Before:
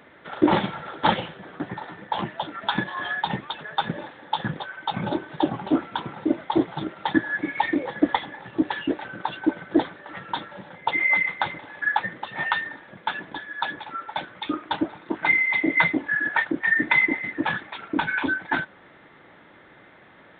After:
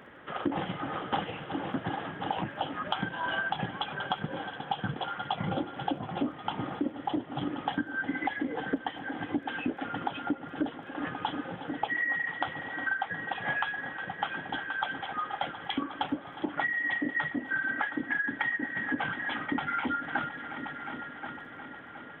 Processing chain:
on a send: echo machine with several playback heads 330 ms, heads all three, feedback 54%, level −20 dB
on the sum: downward compressor 16 to 1, threshold −27 dBFS, peak gain reduction 16 dB
surface crackle 15 per second −58 dBFS
wrong playback speed 48 kHz file played as 44.1 kHz

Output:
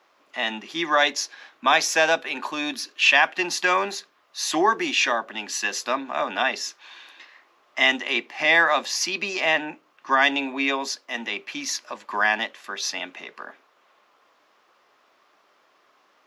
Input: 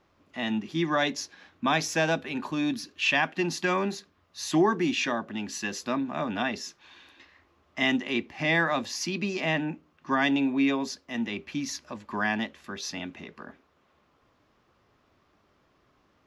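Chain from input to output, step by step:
high-pass filter 580 Hz 12 dB per octave
level +8 dB

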